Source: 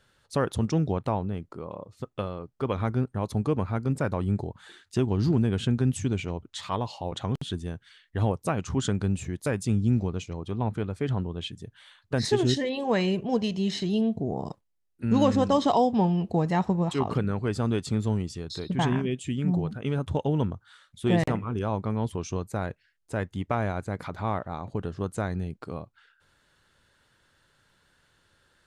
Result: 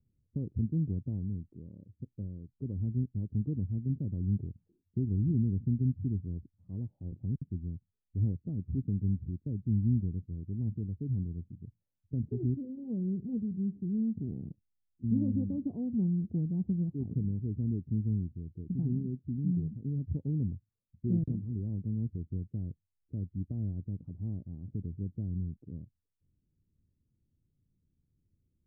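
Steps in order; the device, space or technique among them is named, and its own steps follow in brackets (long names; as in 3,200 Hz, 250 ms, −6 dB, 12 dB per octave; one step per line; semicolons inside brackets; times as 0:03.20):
the neighbour's flat through the wall (low-pass filter 280 Hz 24 dB per octave; parametric band 81 Hz +3.5 dB 0.96 octaves)
level −5 dB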